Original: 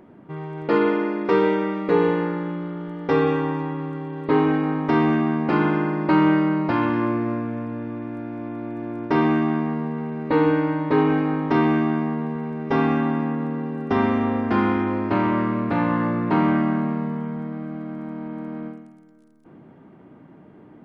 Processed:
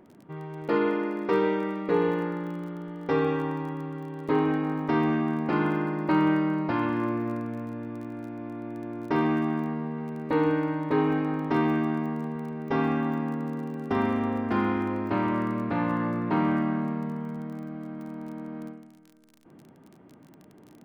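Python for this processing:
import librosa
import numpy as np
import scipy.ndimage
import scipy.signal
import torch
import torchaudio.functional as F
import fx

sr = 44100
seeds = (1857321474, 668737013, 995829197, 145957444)

y = fx.dmg_crackle(x, sr, seeds[0], per_s=25.0, level_db=-34.0)
y = y * librosa.db_to_amplitude(-5.5)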